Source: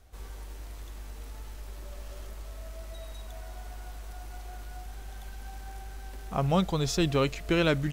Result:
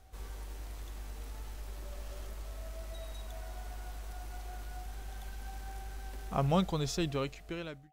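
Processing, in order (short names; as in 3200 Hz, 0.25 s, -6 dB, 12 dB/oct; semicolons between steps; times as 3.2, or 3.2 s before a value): ending faded out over 1.68 s; whine 760 Hz -66 dBFS; gain -1.5 dB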